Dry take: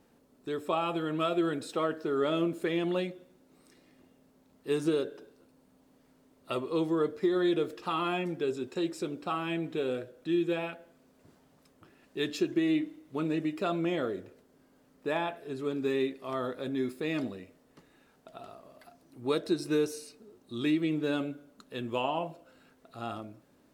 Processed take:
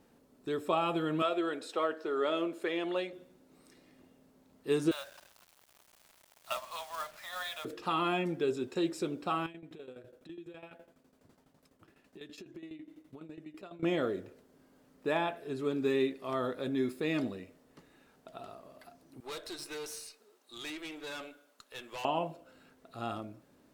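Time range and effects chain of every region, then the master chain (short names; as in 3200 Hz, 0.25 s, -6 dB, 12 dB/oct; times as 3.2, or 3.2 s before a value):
1.22–3.13 HPF 410 Hz + high shelf 7100 Hz -7.5 dB
4.91–7.65 steep high-pass 590 Hz 96 dB/oct + upward compressor, threshold -51 dBFS + companded quantiser 4-bit
9.46–13.83 compressor 4:1, threshold -44 dBFS + tremolo saw down 12 Hz, depth 80%
19.2–22.05 HPF 520 Hz + tilt shelf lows -4 dB, about 880 Hz + tube stage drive 38 dB, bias 0.45
whole clip: dry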